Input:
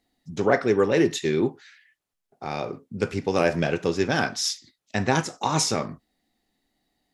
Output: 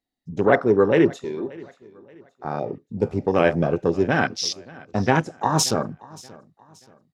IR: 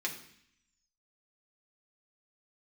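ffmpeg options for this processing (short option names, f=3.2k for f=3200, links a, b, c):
-filter_complex "[0:a]afwtdn=0.0355,asettb=1/sr,asplit=3[a][b][c];[a]atrim=end=1.244[d];[b]atrim=start=1.24:end=2.45,asetpts=PTS-STARTPTS,afade=t=in:d=0.004:c=qsin,afade=t=out:st=1.206:d=0.004:c=qsin,highpass=f=960:p=1[e];[c]atrim=start=2.446[f];[d][e]acrossfade=d=0.004:c1=hsin:c2=qsin[g];[g][f]acrossfade=d=0.004:c1=qsin:c2=hsin,asplit=2[h][i];[i]aecho=0:1:579|1158|1737:0.0794|0.0286|0.0103[j];[h][j]amix=inputs=2:normalize=0,volume=3.5dB"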